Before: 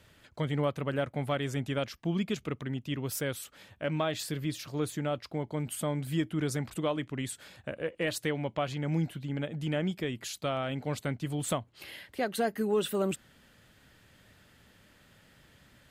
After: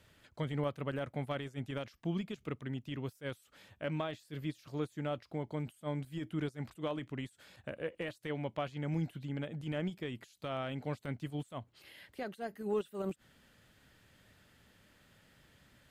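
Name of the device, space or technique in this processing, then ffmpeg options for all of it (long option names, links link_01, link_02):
de-esser from a sidechain: -filter_complex "[0:a]asplit=2[link_01][link_02];[link_02]highpass=frequency=5500:width=0.5412,highpass=frequency=5500:width=1.3066,apad=whole_len=701338[link_03];[link_01][link_03]sidechaincompress=threshold=-58dB:ratio=10:attack=0.67:release=44,volume=-4.5dB"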